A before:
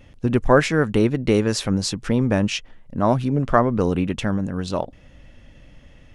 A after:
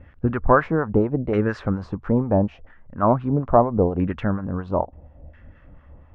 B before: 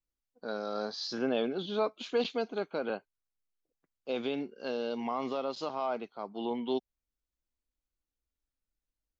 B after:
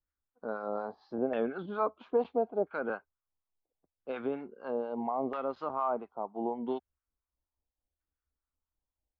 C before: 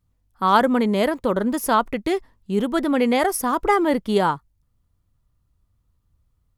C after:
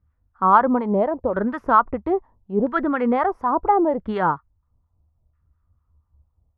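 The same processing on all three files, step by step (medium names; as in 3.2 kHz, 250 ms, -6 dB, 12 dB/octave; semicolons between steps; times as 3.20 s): harmonic tremolo 4.2 Hz, depth 70%, crossover 880 Hz; in parallel at -11.5 dB: saturation -17 dBFS; on the sum: peaking EQ 75 Hz +14 dB 0.32 oct; LFO low-pass saw down 0.75 Hz 660–1700 Hz; trim -1 dB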